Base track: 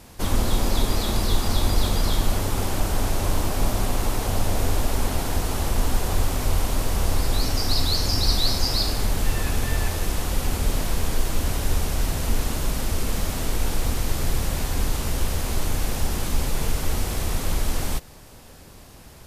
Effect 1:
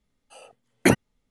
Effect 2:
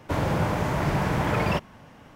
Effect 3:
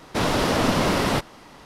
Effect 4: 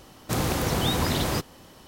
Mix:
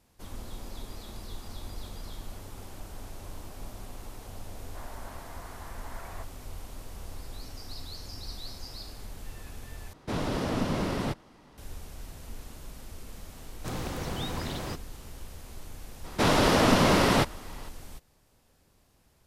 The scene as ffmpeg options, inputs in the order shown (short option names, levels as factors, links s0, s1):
-filter_complex "[3:a]asplit=2[s0][s1];[0:a]volume=0.106[s2];[2:a]highpass=f=520:t=q:w=0.5412,highpass=f=520:t=q:w=1.307,lowpass=f=2100:t=q:w=0.5176,lowpass=f=2100:t=q:w=0.7071,lowpass=f=2100:t=q:w=1.932,afreqshift=74[s3];[s0]lowshelf=f=440:g=8[s4];[4:a]highshelf=f=10000:g=-9[s5];[s2]asplit=2[s6][s7];[s6]atrim=end=9.934[s8];[s4]atrim=end=1.65,asetpts=PTS-STARTPTS,volume=0.224[s9];[s7]atrim=start=11.576[s10];[s3]atrim=end=2.15,asetpts=PTS-STARTPTS,volume=0.126,afade=t=in:d=0.004:c=hsin,afade=t=out:st=2.146:d=0.004:c=hsin,adelay=205065S[s11];[s5]atrim=end=1.87,asetpts=PTS-STARTPTS,volume=0.335,afade=t=in:d=0.004:c=hsin,afade=t=out:st=1.866:d=0.004:c=hsin,adelay=13350[s12];[s1]atrim=end=1.65,asetpts=PTS-STARTPTS,volume=0.944,afade=t=in:d=0.004:c=hsin,afade=t=out:st=1.646:d=0.004:c=hsin,adelay=707364S[s13];[s8][s9]acrossfade=d=0.004:c1=hsin:c2=hsin[s14];[s14][s10]acrossfade=d=0.004:c1=hsin:c2=hsin[s15];[s15][s11][s12][s13]amix=inputs=4:normalize=0"